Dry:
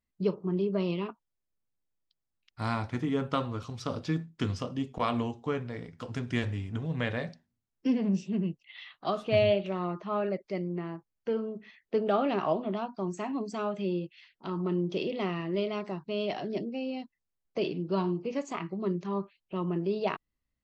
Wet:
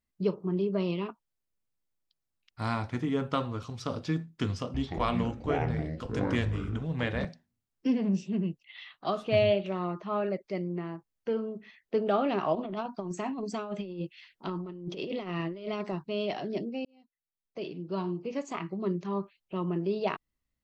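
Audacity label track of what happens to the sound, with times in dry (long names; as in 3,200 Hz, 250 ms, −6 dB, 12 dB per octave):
4.500000	7.250000	delay with pitch and tempo change per echo 241 ms, each echo −7 semitones, echoes 2
12.550000	16.020000	compressor whose output falls as the input rises −34 dBFS, ratio −0.5
16.850000	18.610000	fade in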